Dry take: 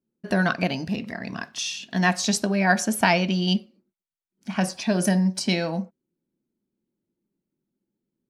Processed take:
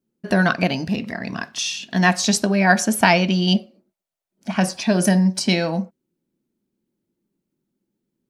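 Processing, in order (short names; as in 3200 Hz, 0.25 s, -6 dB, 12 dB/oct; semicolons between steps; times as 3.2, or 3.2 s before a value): 3.53–4.52 bell 640 Hz +12.5 dB 0.63 oct; gain +4.5 dB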